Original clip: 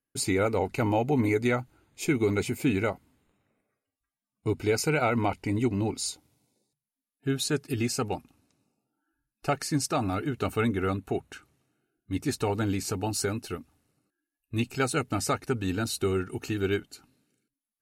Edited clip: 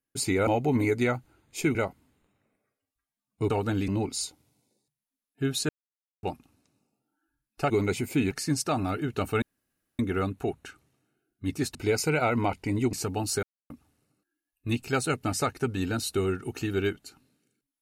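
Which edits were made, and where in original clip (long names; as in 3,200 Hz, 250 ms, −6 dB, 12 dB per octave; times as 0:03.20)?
0:00.47–0:00.91: remove
0:02.19–0:02.80: move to 0:09.55
0:04.55–0:05.73: swap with 0:12.42–0:12.80
0:07.54–0:08.08: silence
0:10.66: splice in room tone 0.57 s
0:13.30–0:13.57: silence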